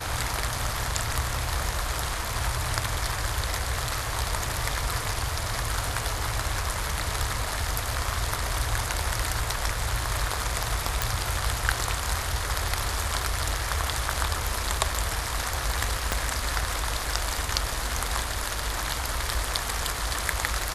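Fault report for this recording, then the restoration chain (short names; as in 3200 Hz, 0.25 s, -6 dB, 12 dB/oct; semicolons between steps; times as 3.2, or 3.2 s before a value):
11.02 pop
16.12 pop -8 dBFS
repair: de-click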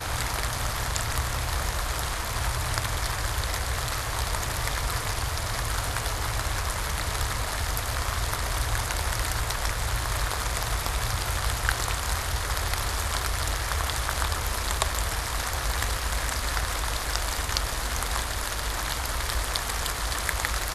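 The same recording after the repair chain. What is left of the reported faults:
16.12 pop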